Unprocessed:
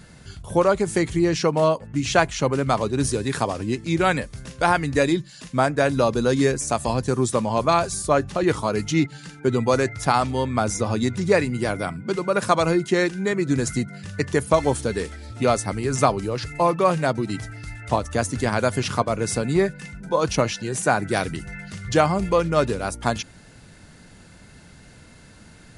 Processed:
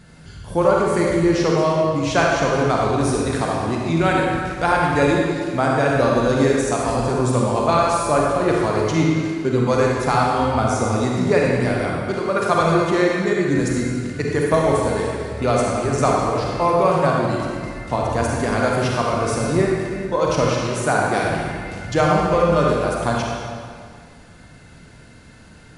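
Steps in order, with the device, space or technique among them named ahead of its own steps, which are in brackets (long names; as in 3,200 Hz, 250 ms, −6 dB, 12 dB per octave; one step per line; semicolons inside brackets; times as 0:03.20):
swimming-pool hall (convolution reverb RT60 2.1 s, pre-delay 36 ms, DRR −2.5 dB; high-shelf EQ 4,600 Hz −5 dB)
level −1 dB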